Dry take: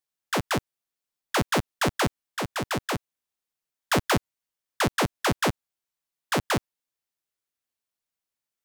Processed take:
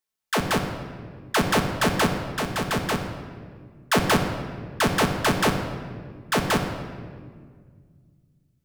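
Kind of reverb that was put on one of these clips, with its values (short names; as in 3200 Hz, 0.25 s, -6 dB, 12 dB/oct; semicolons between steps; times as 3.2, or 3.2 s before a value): shoebox room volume 2700 m³, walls mixed, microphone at 1.5 m; gain +1.5 dB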